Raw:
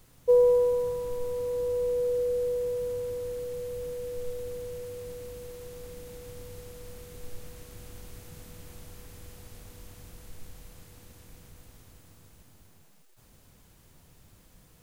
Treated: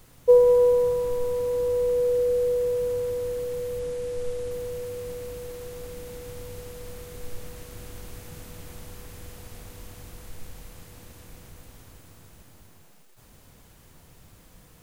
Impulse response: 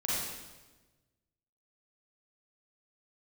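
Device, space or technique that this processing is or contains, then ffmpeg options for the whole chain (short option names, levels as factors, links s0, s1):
filtered reverb send: -filter_complex "[0:a]asettb=1/sr,asplit=3[s0][s1][s2];[s0]atrim=end=3.794[s3];[s1]atrim=start=3.79:end=4.51,asetpts=PTS-STARTPTS,afade=t=in:d=0.004:c=qsin,afade=t=out:st=0.716:d=0.004:c=qsin,lowpass=f=11000:w=0.5412,lowpass=f=11000:w=1.3066[s4];[s2]atrim=start=4.506[s5];[s3][s4]acrossfade=d=0.004:c1=hsin:c2=qsin[s6];[s6][s5]acrossfade=d=0.004:c1=qsin:c2=hsin,asplit=2[s7][s8];[s8]highpass=290,lowpass=3300[s9];[1:a]atrim=start_sample=2205[s10];[s9][s10]afir=irnorm=-1:irlink=0,volume=0.2[s11];[s7][s11]amix=inputs=2:normalize=0,volume=1.68"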